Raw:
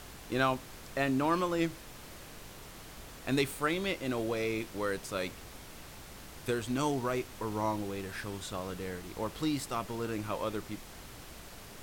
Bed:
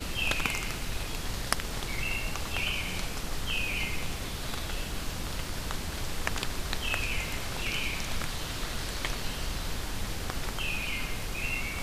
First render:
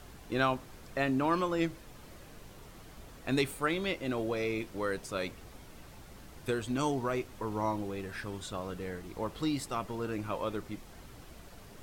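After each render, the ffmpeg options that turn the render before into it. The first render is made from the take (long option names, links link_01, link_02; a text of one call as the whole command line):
ffmpeg -i in.wav -af "afftdn=noise_reduction=7:noise_floor=-49" out.wav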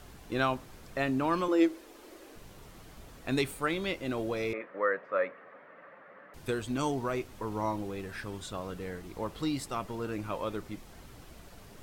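ffmpeg -i in.wav -filter_complex "[0:a]asettb=1/sr,asplit=3[link_01][link_02][link_03];[link_01]atrim=end=1.484[link_04];[link_02]atrim=start=1.48:end=2.36,asetpts=PTS-STARTPTS,afade=type=in:duration=0.004:curve=qsin,afade=type=out:start_time=0.876:duration=0.004:curve=qsin,lowshelf=frequency=220:width_type=q:width=3:gain=-14[link_05];[link_03]atrim=start=2.356[link_06];[link_04][link_05]acrossfade=duration=0.004:curve1=hsin:curve2=qsin[link_07];[link_07][link_06]acrossfade=duration=0.004:curve1=qsin:curve2=hsin,asettb=1/sr,asplit=3[link_08][link_09][link_10];[link_08]atrim=end=4.534[link_11];[link_09]atrim=start=4.53:end=6.34,asetpts=PTS-STARTPTS,afade=type=in:duration=0.004:curve=qsin,afade=type=out:start_time=1.806:duration=0.004:curve=qsin,highpass=frequency=230:width=0.5412,highpass=frequency=230:width=1.3066,equalizer=frequency=240:width_type=q:width=4:gain=-7,equalizer=frequency=350:width_type=q:width=4:gain=-9,equalizer=frequency=550:width_type=q:width=4:gain=10,equalizer=frequency=830:width_type=q:width=4:gain=-3,equalizer=frequency=1200:width_type=q:width=4:gain=8,equalizer=frequency=1800:width_type=q:width=4:gain=10,lowpass=frequency=2100:width=0.5412,lowpass=frequency=2100:width=1.3066[link_12];[link_10]atrim=start=6.336[link_13];[link_11][link_12]acrossfade=duration=0.004:curve1=hsin:curve2=qsin[link_14];[link_14][link_13]acrossfade=duration=0.004:curve1=qsin:curve2=hsin" out.wav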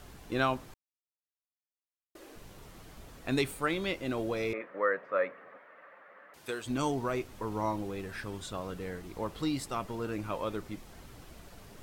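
ffmpeg -i in.wav -filter_complex "[0:a]asettb=1/sr,asplit=3[link_01][link_02][link_03];[link_01]atrim=end=5.584[link_04];[link_02]atrim=start=5.58:end=6.66,asetpts=PTS-STARTPTS,afade=type=in:duration=0.004:curve=qsin,afade=type=out:start_time=1.076:duration=0.004:curve=qsin,highpass=frequency=610:poles=1[link_05];[link_03]atrim=start=6.656[link_06];[link_04][link_05]acrossfade=duration=0.004:curve1=hsin:curve2=qsin[link_07];[link_07][link_06]acrossfade=duration=0.004:curve1=qsin:curve2=hsin,asplit=3[link_08][link_09][link_10];[link_08]atrim=end=0.74,asetpts=PTS-STARTPTS,afade=type=out:start_time=0.736:duration=0.004:curve=hsin[link_11];[link_09]atrim=start=0.74:end=2.15,asetpts=PTS-STARTPTS,volume=0[link_12];[link_10]atrim=start=2.15,asetpts=PTS-STARTPTS,afade=type=in:duration=0.004:curve=hsin[link_13];[link_11][link_12][link_13]concat=n=3:v=0:a=1" out.wav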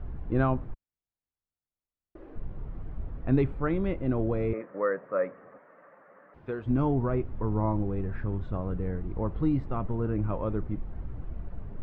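ffmpeg -i in.wav -af "lowpass=1700,aemphasis=mode=reproduction:type=riaa" out.wav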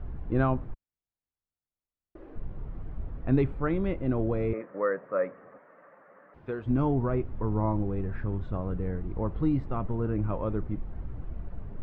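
ffmpeg -i in.wav -af anull out.wav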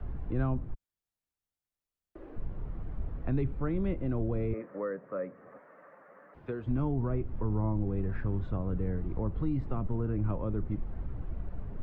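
ffmpeg -i in.wav -filter_complex "[0:a]acrossover=split=360[link_01][link_02];[link_02]acompressor=threshold=-42dB:ratio=2.5[link_03];[link_01][link_03]amix=inputs=2:normalize=0,acrossover=split=110|530|1200[link_04][link_05][link_06][link_07];[link_05]alimiter=level_in=3dB:limit=-24dB:level=0:latency=1,volume=-3dB[link_08];[link_04][link_08][link_06][link_07]amix=inputs=4:normalize=0" out.wav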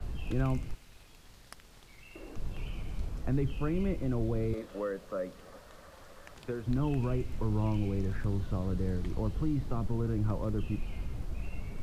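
ffmpeg -i in.wav -i bed.wav -filter_complex "[1:a]volume=-21.5dB[link_01];[0:a][link_01]amix=inputs=2:normalize=0" out.wav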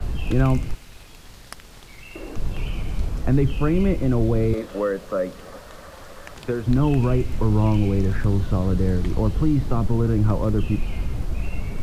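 ffmpeg -i in.wav -af "volume=11.5dB" out.wav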